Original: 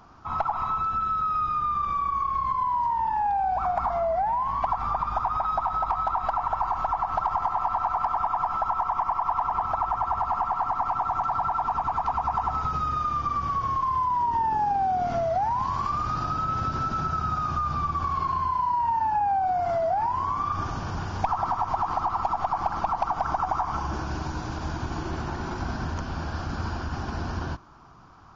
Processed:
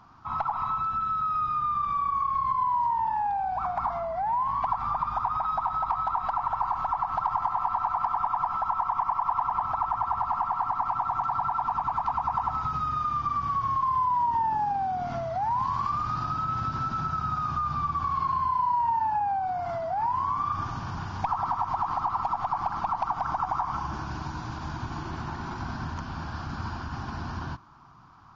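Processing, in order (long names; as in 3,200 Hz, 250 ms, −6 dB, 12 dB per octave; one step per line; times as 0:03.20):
octave-band graphic EQ 125/250/500/1,000/2,000/4,000 Hz +7/+4/−5/+8/+3/+5 dB
level −8 dB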